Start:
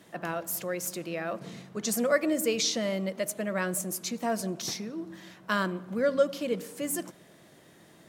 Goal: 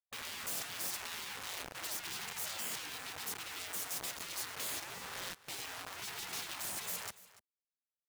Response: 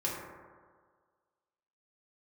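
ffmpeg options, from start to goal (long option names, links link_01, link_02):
-af "anlmdn=0.00398,lowshelf=frequency=120:gain=-10,acrusher=bits=5:dc=4:mix=0:aa=0.000001,alimiter=limit=-23.5dB:level=0:latency=1:release=12,asoftclip=type=tanh:threshold=-38dB,areverse,acompressor=mode=upward:threshold=-57dB:ratio=2.5,areverse,afftfilt=real='re*lt(hypot(re,im),0.00631)':imag='im*lt(hypot(re,im),0.00631)':win_size=1024:overlap=0.75,aecho=1:1:289:0.119,volume=11.5dB"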